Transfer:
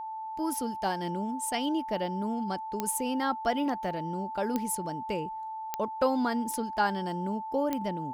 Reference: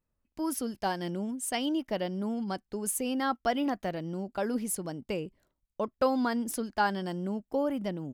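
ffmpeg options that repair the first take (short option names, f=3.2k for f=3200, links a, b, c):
-af "adeclick=t=4,bandreject=f=880:w=30"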